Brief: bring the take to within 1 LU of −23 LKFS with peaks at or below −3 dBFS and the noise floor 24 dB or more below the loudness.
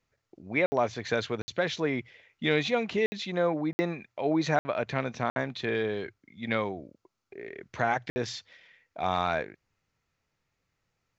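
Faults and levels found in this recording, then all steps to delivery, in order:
number of dropouts 7; longest dropout 60 ms; integrated loudness −30.0 LKFS; sample peak −12.0 dBFS; target loudness −23.0 LKFS
→ repair the gap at 0:00.66/0:01.42/0:03.06/0:03.73/0:04.59/0:05.30/0:08.10, 60 ms
level +7 dB

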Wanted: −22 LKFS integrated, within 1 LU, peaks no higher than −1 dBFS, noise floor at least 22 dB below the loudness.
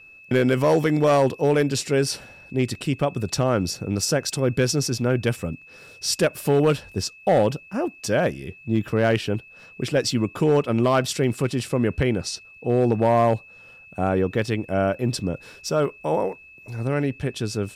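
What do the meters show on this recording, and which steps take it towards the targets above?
share of clipped samples 0.8%; peaks flattened at −12.0 dBFS; interfering tone 2,600 Hz; level of the tone −45 dBFS; integrated loudness −23.0 LKFS; sample peak −12.0 dBFS; target loudness −22.0 LKFS
→ clipped peaks rebuilt −12 dBFS
notch filter 2,600 Hz, Q 30
level +1 dB

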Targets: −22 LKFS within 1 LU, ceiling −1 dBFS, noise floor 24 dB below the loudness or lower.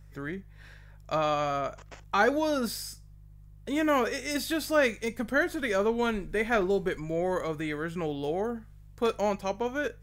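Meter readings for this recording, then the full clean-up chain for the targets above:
mains hum 50 Hz; hum harmonics up to 150 Hz; level of the hum −49 dBFS; integrated loudness −29.0 LKFS; sample peak −10.5 dBFS; target loudness −22.0 LKFS
→ hum removal 50 Hz, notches 3
level +7 dB

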